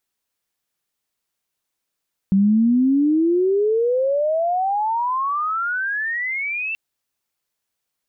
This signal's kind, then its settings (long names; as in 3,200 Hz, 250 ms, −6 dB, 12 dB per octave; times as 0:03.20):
glide logarithmic 190 Hz → 2,700 Hz −12 dBFS → −22.5 dBFS 4.43 s